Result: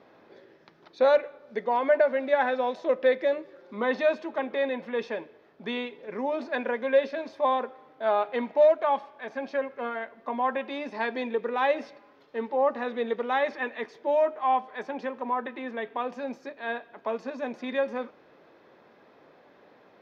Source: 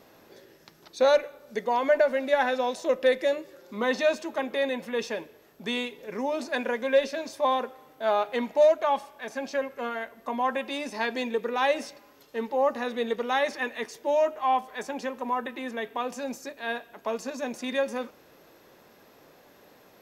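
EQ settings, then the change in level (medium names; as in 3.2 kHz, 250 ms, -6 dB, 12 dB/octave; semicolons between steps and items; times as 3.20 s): high-pass 210 Hz 6 dB/octave; distance through air 290 m; band-stop 2.8 kHz, Q 19; +1.5 dB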